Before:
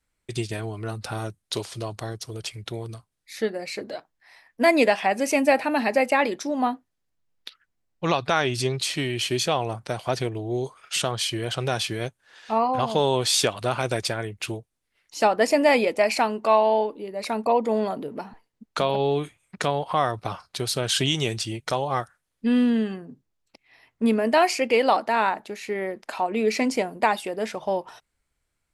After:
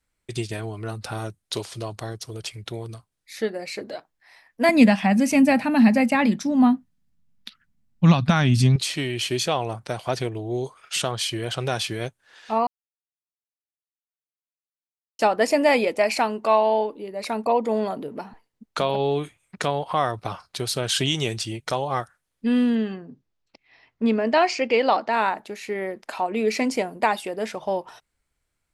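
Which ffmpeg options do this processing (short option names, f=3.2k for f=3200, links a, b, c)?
-filter_complex "[0:a]asettb=1/sr,asplit=3[a][b][c];[a]atrim=end=4.694[d];[b]atrim=start=4.69:end=8.76,asetpts=PTS-STARTPTS,afade=t=in:d=0.004:c=qsin,afade=t=out:st=4.066:d=0.004:c=qsin,lowshelf=f=290:t=q:w=3:g=10.5[e];[c]atrim=start=8.756[f];[d][e]acrossfade=d=0.004:c1=hsin:c2=qsin[g];[g][f]acrossfade=d=0.004:c1=qsin:c2=hsin,asettb=1/sr,asplit=3[h][i][j];[h]atrim=end=22.754[k];[i]atrim=start=22.75:end=25.13,asetpts=PTS-STARTPTS,afade=t=in:d=0.004:c=qsin,afade=t=out:st=2.376:d=0.004:c=qsin,lowpass=f=6.2k:w=0.5412,lowpass=f=6.2k:w=1.3066[l];[j]atrim=start=25.126[m];[k][l]acrossfade=d=0.004:c1=hsin:c2=qsin[n];[n][m]acrossfade=d=0.004:c1=qsin:c2=hsin,asplit=3[o][p][q];[o]atrim=end=12.67,asetpts=PTS-STARTPTS,afade=t=out:st=12.666:d=0.004:c=hsin[r];[p]atrim=start=12.67:end=15.19,asetpts=PTS-STARTPTS,volume=0[s];[q]atrim=start=15.19,asetpts=PTS-STARTPTS,afade=t=in:d=0.004:c=hsin[t];[r][s][t]concat=n=3:v=0:a=1"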